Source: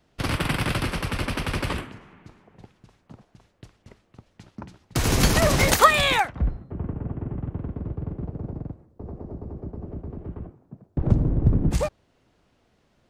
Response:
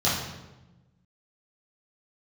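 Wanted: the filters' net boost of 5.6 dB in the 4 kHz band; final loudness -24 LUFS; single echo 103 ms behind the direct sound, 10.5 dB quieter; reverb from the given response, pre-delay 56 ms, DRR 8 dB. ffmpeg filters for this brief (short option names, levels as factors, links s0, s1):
-filter_complex "[0:a]equalizer=f=4000:t=o:g=7,aecho=1:1:103:0.299,asplit=2[s0][s1];[1:a]atrim=start_sample=2205,adelay=56[s2];[s1][s2]afir=irnorm=-1:irlink=0,volume=0.075[s3];[s0][s3]amix=inputs=2:normalize=0,volume=0.708"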